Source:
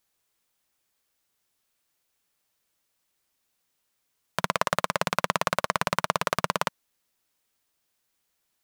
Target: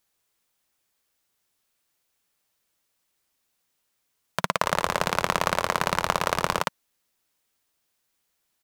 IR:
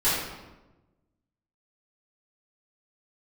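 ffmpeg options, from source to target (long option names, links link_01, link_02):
-filter_complex "[0:a]asplit=3[link_01][link_02][link_03];[link_01]afade=type=out:start_time=4.61:duration=0.02[link_04];[link_02]asplit=7[link_05][link_06][link_07][link_08][link_09][link_10][link_11];[link_06]adelay=137,afreqshift=-87,volume=-7dB[link_12];[link_07]adelay=274,afreqshift=-174,volume=-13.4dB[link_13];[link_08]adelay=411,afreqshift=-261,volume=-19.8dB[link_14];[link_09]adelay=548,afreqshift=-348,volume=-26.1dB[link_15];[link_10]adelay=685,afreqshift=-435,volume=-32.5dB[link_16];[link_11]adelay=822,afreqshift=-522,volume=-38.9dB[link_17];[link_05][link_12][link_13][link_14][link_15][link_16][link_17]amix=inputs=7:normalize=0,afade=type=in:start_time=4.61:duration=0.02,afade=type=out:start_time=6.62:duration=0.02[link_18];[link_03]afade=type=in:start_time=6.62:duration=0.02[link_19];[link_04][link_18][link_19]amix=inputs=3:normalize=0,volume=1dB"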